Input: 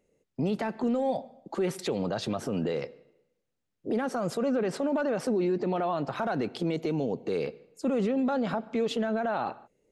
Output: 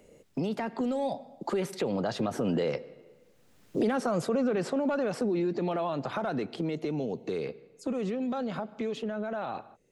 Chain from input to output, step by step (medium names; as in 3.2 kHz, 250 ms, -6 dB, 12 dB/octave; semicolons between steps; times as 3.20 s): Doppler pass-by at 3.45 s, 12 m/s, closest 11 m; three bands compressed up and down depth 70%; trim +5.5 dB